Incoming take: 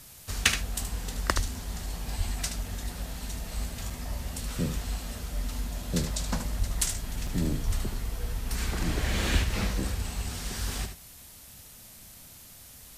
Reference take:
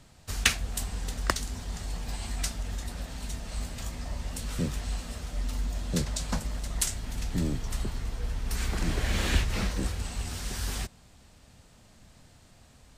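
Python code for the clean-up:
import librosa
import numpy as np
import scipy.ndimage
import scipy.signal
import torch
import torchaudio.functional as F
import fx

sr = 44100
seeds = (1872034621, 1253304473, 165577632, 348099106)

y = fx.fix_deplosive(x, sr, at_s=(1.35, 2.17, 6.58, 7.66))
y = fx.fix_interpolate(y, sr, at_s=(3.9, 7.27), length_ms=4.4)
y = fx.noise_reduce(y, sr, print_start_s=12.26, print_end_s=12.76, reduce_db=6.0)
y = fx.fix_echo_inverse(y, sr, delay_ms=75, level_db=-8.5)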